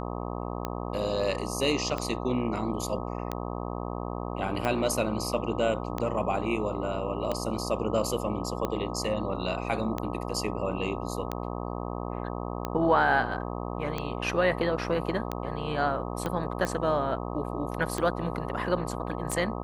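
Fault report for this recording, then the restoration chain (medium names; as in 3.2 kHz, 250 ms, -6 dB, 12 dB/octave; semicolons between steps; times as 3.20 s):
buzz 60 Hz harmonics 21 -34 dBFS
tick 45 rpm -16 dBFS
16.26 s: pop -17 dBFS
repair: de-click; de-hum 60 Hz, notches 21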